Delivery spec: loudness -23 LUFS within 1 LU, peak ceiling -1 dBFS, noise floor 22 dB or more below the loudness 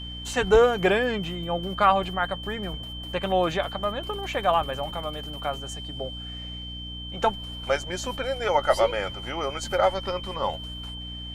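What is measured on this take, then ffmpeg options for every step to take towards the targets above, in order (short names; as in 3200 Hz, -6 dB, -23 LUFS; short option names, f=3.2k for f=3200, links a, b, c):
hum 60 Hz; harmonics up to 300 Hz; hum level -36 dBFS; steady tone 3100 Hz; tone level -37 dBFS; loudness -26.5 LUFS; peak -6.5 dBFS; loudness target -23.0 LUFS
-> -af "bandreject=f=60:t=h:w=6,bandreject=f=120:t=h:w=6,bandreject=f=180:t=h:w=6,bandreject=f=240:t=h:w=6,bandreject=f=300:t=h:w=6"
-af "bandreject=f=3.1k:w=30"
-af "volume=3.5dB"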